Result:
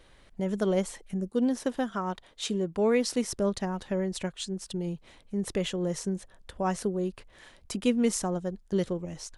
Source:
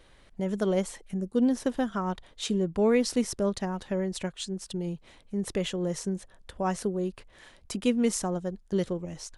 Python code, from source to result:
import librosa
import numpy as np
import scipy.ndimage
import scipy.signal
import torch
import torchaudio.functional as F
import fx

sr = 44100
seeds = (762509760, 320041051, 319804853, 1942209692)

y = fx.low_shelf(x, sr, hz=150.0, db=-9.0, at=(1.29, 3.29))